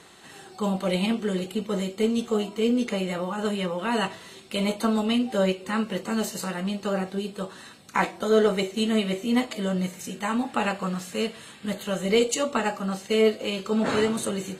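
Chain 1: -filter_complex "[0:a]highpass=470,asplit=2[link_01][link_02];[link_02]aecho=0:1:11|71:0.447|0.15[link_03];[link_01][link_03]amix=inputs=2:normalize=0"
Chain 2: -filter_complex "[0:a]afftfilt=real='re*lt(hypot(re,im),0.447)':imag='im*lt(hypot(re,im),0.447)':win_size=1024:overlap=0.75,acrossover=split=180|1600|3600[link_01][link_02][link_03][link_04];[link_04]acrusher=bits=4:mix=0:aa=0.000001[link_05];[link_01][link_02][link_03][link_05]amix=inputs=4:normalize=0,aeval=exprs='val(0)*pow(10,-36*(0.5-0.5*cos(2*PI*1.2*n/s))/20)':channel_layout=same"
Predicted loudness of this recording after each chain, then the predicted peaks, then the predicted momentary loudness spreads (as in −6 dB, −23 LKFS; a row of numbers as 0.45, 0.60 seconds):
−29.0, −37.5 LKFS; −9.5, −16.5 dBFS; 11, 19 LU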